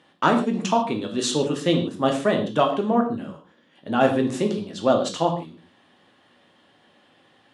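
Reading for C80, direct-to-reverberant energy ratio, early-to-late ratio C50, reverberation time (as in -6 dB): 12.0 dB, 2.5 dB, 8.5 dB, not exponential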